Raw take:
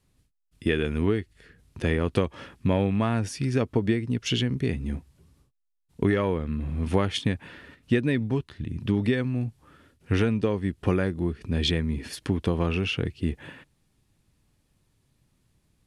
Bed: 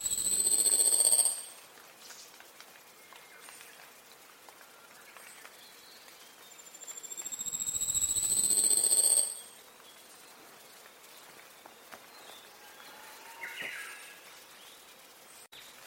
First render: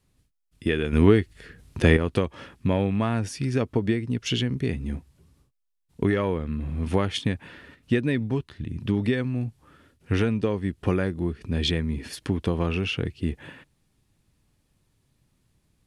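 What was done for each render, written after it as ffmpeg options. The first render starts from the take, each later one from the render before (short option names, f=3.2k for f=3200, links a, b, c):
-filter_complex "[0:a]asplit=3[a][b][c];[a]atrim=end=0.932[d];[b]atrim=start=0.928:end=1.972,asetpts=PTS-STARTPTS,volume=7.5dB[e];[c]atrim=start=1.968[f];[d][e]acrossfade=d=0.004:c1=hsin:c2=hsin[g];[g][f]acrossfade=d=0.004:c1=hsin:c2=hsin"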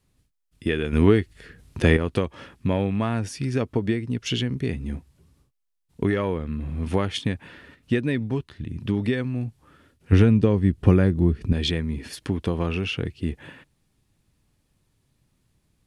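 -filter_complex "[0:a]asettb=1/sr,asplit=3[a][b][c];[a]atrim=end=10.124[d];[b]atrim=start=10.12:end=11.53,asetpts=PTS-STARTPTS,afade=t=in:d=0.004:c=qsin,afade=t=out:st=1.406:d=0.004:c=qsin,lowshelf=f=310:g=11[e];[c]atrim=start=11.526[f];[d][e]acrossfade=d=0.004:c1=hsin:c2=qsin[g];[g][f]acrossfade=d=0.004:c1=qsin:c2=hsin"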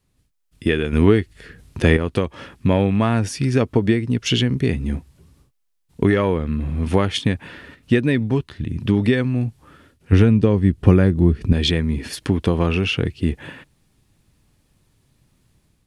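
-af "dynaudnorm=f=120:g=5:m=7dB"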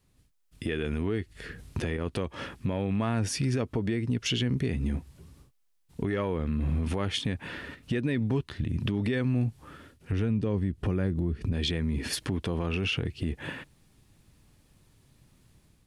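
-af "acompressor=threshold=-24dB:ratio=3,alimiter=limit=-20dB:level=0:latency=1:release=24"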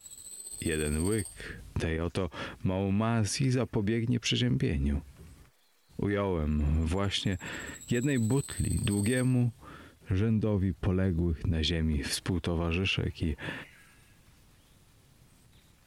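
-filter_complex "[1:a]volume=-15.5dB[a];[0:a][a]amix=inputs=2:normalize=0"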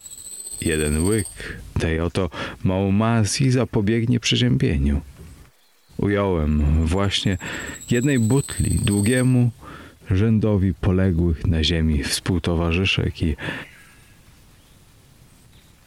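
-af "volume=9.5dB"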